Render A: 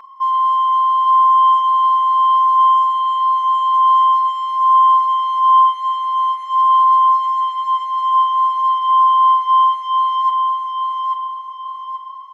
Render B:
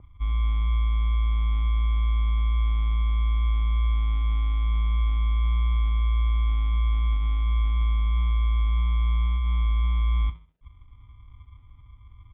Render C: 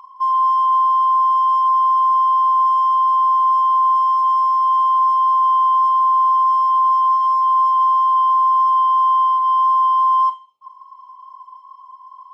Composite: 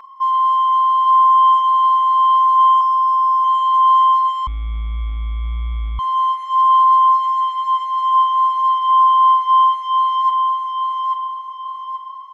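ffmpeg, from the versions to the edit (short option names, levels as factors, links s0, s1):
-filter_complex "[0:a]asplit=3[s0][s1][s2];[s0]atrim=end=2.812[s3];[2:a]atrim=start=2.808:end=3.442[s4];[s1]atrim=start=3.438:end=4.472[s5];[1:a]atrim=start=4.468:end=5.992[s6];[s2]atrim=start=5.988[s7];[s3][s4]acrossfade=d=0.004:c1=hsin:c2=hsin[s8];[s8][s5]acrossfade=d=0.004:c1=hsin:c2=hsin[s9];[s9][s6]acrossfade=d=0.004:c1=hsin:c2=hsin[s10];[s10][s7]acrossfade=d=0.004:c1=hsin:c2=hsin"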